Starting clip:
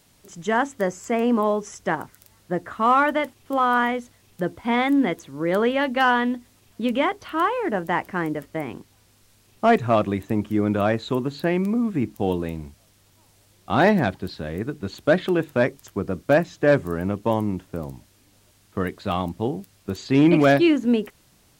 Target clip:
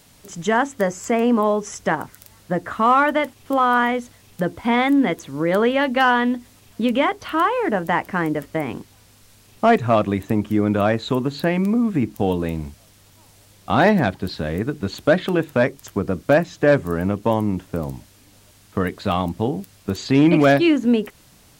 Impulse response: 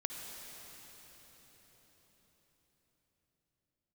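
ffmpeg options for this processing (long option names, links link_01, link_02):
-filter_complex "[0:a]bandreject=frequency=360:width=12,asplit=2[link_01][link_02];[link_02]acompressor=threshold=-27dB:ratio=6,volume=1.5dB[link_03];[link_01][link_03]amix=inputs=2:normalize=0"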